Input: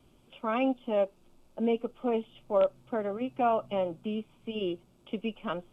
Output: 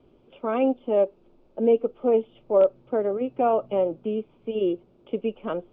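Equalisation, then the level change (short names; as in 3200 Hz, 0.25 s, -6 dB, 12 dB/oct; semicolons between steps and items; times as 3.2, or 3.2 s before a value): air absorption 210 m; bell 430 Hz +11 dB 1.2 oct; 0.0 dB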